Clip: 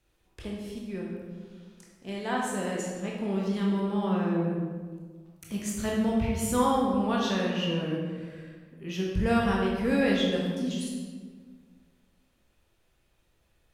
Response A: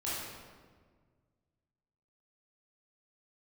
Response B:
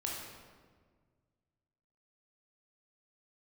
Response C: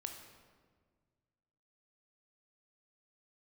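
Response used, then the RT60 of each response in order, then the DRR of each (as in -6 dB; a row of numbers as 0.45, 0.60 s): B; 1.6, 1.6, 1.6 s; -9.5, -3.0, 4.0 dB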